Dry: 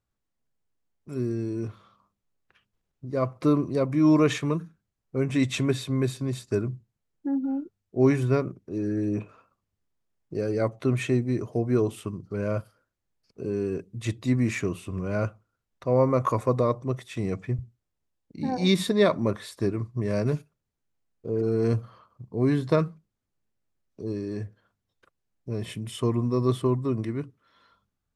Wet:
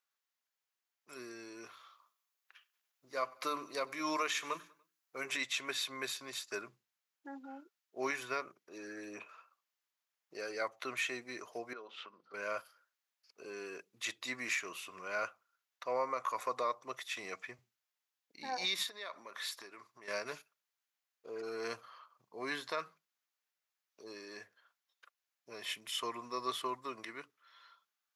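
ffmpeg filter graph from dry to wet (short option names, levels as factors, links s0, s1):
-filter_complex "[0:a]asettb=1/sr,asplit=3[s0][s1][s2];[s0]atrim=end=1.674[s3];[s1]atrim=start=1.67:end=5.37,asetpts=PTS-STARTPTS,afade=t=in:d=0.004:c=qsin,afade=t=out:st=3.696:d=0.004:c=qsin,highshelf=f=6800:g=7,bandreject=f=50:t=h:w=6,bandreject=f=100:t=h:w=6,bandreject=f=150:t=h:w=6,bandreject=f=200:t=h:w=6,bandreject=f=250:t=h:w=6,bandreject=f=300:t=h:w=6,bandreject=f=350:t=h:w=6,bandreject=f=400:t=h:w=6,aecho=1:1:97|194|291:0.0631|0.0328|0.0171,atrim=end_sample=163170[s4];[s2]atrim=start=5.366[s5];[s3][s4]acrossfade=d=0.004:c1=hsin:c2=qsin[s6];[s6][s5]acrossfade=d=0.004:c1=qsin:c2=hsin,asettb=1/sr,asplit=3[s7][s8][s9];[s7]atrim=end=11.734[s10];[s8]atrim=start=11.73:end=12.34,asetpts=PTS-STARTPTS,afade=t=in:d=0.004:c=qsin,afade=t=out:st=0.606:d=0.004:c=qsin,highpass=180,equalizer=f=220:t=q:w=4:g=5,equalizer=f=520:t=q:w=4:g=9,equalizer=f=900:t=q:w=4:g=4,equalizer=f=1400:t=q:w=4:g=7,equalizer=f=3700:t=q:w=4:g=3,lowpass=f=4300:w=0.5412,lowpass=f=4300:w=1.3066,acompressor=threshold=0.00631:ratio=2:attack=3.2:release=140:knee=1:detection=peak[s11];[s9]atrim=start=12.336[s12];[s10][s11]acrossfade=d=0.004:c1=hsin:c2=qsin[s13];[s13][s12]acrossfade=d=0.004:c1=qsin:c2=hsin,asettb=1/sr,asplit=3[s14][s15][s16];[s14]atrim=end=18.834[s17];[s15]atrim=start=18.83:end=20.08,asetpts=PTS-STARTPTS,afade=t=in:d=0.004:c=qsin,afade=t=out:st=1.246:d=0.004:c=qsin,lowshelf=f=180:g=-8,acompressor=threshold=0.0224:ratio=12:attack=3.2:release=140:knee=1:detection=peak[s18];[s16]atrim=start=20.076[s19];[s17][s18]acrossfade=d=0.004:c1=hsin:c2=qsin[s20];[s20][s19]acrossfade=d=0.004:c1=qsin:c2=hsin,highpass=1200,equalizer=f=8600:w=6.2:g=-13.5,alimiter=level_in=1.41:limit=0.0631:level=0:latency=1:release=178,volume=0.708,volume=1.33"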